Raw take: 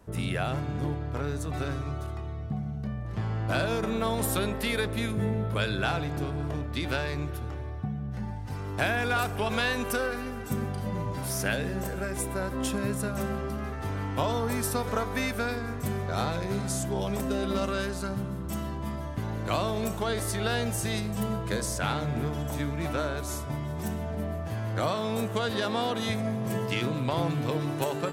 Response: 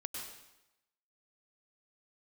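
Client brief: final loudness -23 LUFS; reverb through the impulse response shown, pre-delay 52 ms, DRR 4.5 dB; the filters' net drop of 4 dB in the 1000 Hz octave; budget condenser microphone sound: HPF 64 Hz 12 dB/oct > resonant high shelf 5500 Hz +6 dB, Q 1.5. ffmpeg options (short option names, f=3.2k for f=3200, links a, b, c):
-filter_complex "[0:a]equalizer=f=1k:t=o:g=-5.5,asplit=2[a][b];[1:a]atrim=start_sample=2205,adelay=52[c];[b][c]afir=irnorm=-1:irlink=0,volume=-4dB[d];[a][d]amix=inputs=2:normalize=0,highpass=64,highshelf=f=5.5k:t=q:w=1.5:g=6,volume=6.5dB"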